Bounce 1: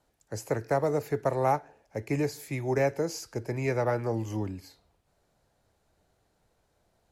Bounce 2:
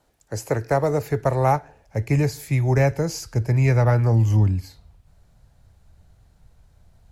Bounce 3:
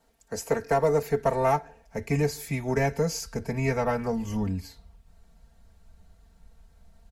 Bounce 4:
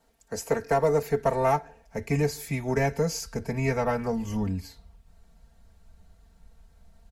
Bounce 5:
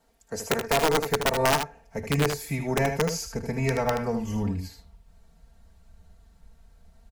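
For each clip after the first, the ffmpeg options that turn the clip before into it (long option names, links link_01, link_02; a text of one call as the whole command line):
ffmpeg -i in.wav -af "asubboost=boost=8:cutoff=130,volume=6.5dB" out.wav
ffmpeg -i in.wav -filter_complex "[0:a]asplit=2[link_01][link_02];[link_02]asoftclip=type=tanh:threshold=-20.5dB,volume=-7dB[link_03];[link_01][link_03]amix=inputs=2:normalize=0,aecho=1:1:4.4:0.95,volume=-7dB" out.wav
ffmpeg -i in.wav -af anull out.wav
ffmpeg -i in.wav -af "aeval=exprs='(mod(5.96*val(0)+1,2)-1)/5.96':channel_layout=same,aecho=1:1:77:0.447" out.wav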